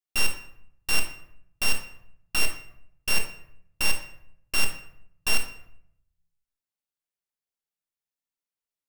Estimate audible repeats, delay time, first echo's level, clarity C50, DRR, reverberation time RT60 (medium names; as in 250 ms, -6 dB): no echo, no echo, no echo, 8.0 dB, 4.0 dB, 0.70 s